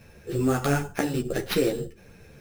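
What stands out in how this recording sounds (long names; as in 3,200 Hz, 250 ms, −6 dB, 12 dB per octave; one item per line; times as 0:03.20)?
aliases and images of a low sample rate 7,900 Hz, jitter 0%
a shimmering, thickened sound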